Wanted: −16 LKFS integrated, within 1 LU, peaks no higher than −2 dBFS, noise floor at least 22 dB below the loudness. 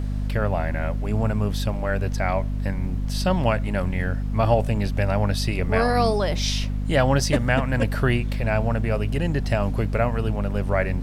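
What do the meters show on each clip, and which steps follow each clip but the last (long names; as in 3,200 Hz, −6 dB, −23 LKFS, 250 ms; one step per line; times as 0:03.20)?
mains hum 50 Hz; hum harmonics up to 250 Hz; level of the hum −23 dBFS; background noise floor −26 dBFS; target noise floor −46 dBFS; integrated loudness −23.5 LKFS; sample peak −6.5 dBFS; target loudness −16.0 LKFS
→ hum removal 50 Hz, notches 5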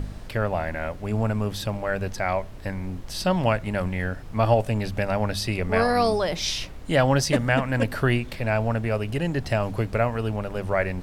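mains hum none found; background noise floor −38 dBFS; target noise floor −47 dBFS
→ noise reduction from a noise print 9 dB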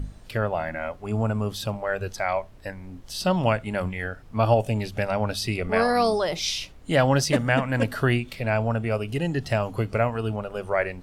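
background noise floor −46 dBFS; target noise floor −48 dBFS
→ noise reduction from a noise print 6 dB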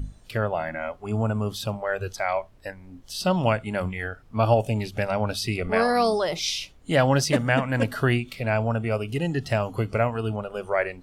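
background noise floor −52 dBFS; integrated loudness −25.5 LKFS; sample peak −8.0 dBFS; target loudness −16.0 LKFS
→ level +9.5 dB
brickwall limiter −2 dBFS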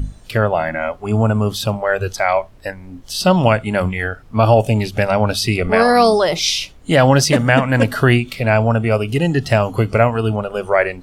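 integrated loudness −16.5 LKFS; sample peak −2.0 dBFS; background noise floor −42 dBFS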